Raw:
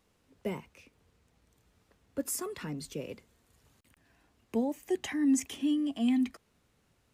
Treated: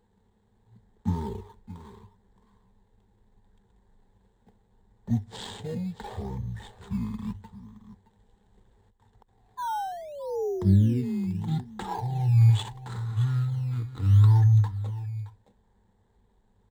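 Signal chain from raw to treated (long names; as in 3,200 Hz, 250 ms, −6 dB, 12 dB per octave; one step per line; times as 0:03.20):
running median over 9 samples
sound drawn into the spectrogram fall, 0:04.09–0:04.94, 330–2,400 Hz −38 dBFS
EQ curve with evenly spaced ripples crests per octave 0.96, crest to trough 12 dB
on a send: single-tap delay 265 ms −15 dB
on the sum: wrong playback speed 78 rpm record played at 33 rpm
in parallel at −11 dB: sample-and-hold swept by an LFO 13×, swing 100% 0.74 Hz
on the sum: level +2 dB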